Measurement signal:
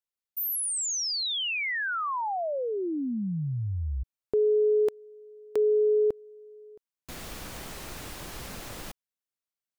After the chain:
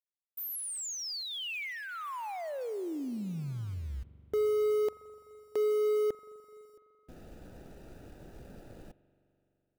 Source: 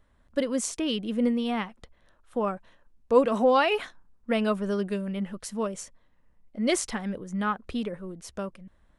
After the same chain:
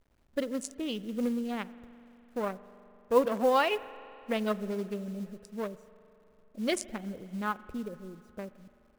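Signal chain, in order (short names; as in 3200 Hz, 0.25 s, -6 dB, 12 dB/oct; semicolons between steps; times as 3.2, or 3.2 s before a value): Wiener smoothing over 41 samples; low shelf 330 Hz -5.5 dB; companded quantiser 6-bit; spring tank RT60 3.2 s, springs 42 ms, chirp 70 ms, DRR 16.5 dB; gain -2 dB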